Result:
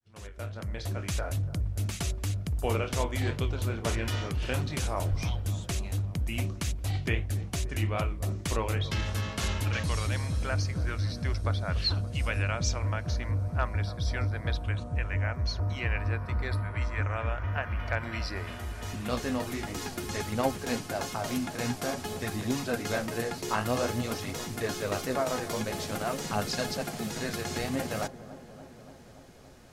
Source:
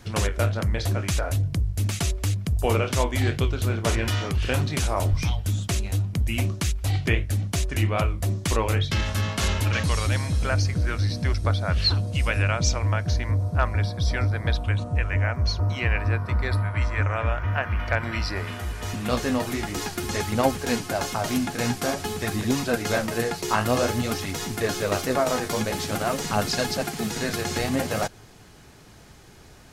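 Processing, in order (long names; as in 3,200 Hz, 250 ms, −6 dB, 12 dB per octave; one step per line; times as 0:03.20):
fade in at the beginning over 1.16 s
delay with a low-pass on its return 287 ms, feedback 74%, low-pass 1,100 Hz, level −15 dB
level −6.5 dB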